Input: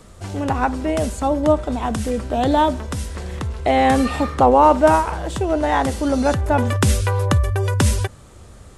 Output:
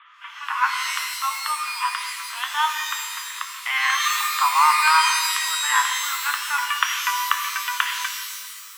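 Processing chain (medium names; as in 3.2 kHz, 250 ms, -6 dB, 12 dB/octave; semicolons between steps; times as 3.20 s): Chebyshev band-pass 1–3.4 kHz, order 5; pitch-shifted reverb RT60 1.5 s, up +12 st, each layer -2 dB, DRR 4.5 dB; trim +5 dB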